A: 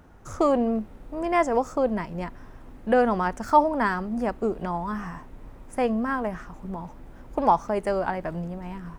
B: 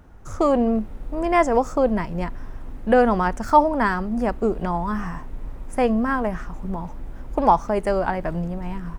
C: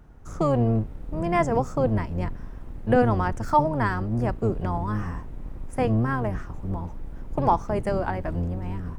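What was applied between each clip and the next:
low-shelf EQ 68 Hz +10 dB; automatic gain control gain up to 4 dB
sub-octave generator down 1 octave, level +3 dB; level −5 dB

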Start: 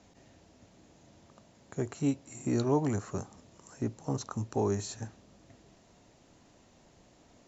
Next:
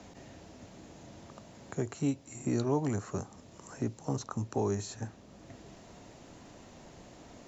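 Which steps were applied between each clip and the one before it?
multiband upward and downward compressor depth 40%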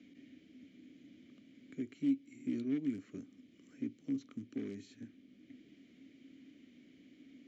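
wavefolder on the positive side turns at −28 dBFS
formant filter i
level +3.5 dB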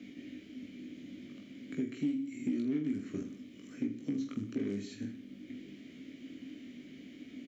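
on a send: reverse bouncing-ball delay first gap 20 ms, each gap 1.3×, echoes 5
on the sum: downward compressor 3 to 1, threshold −41 dBFS, peak gain reduction 10 dB
level +8.5 dB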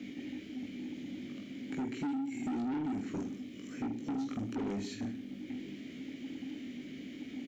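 soft clipping −37.5 dBFS, distortion −7 dB
level +5.5 dB

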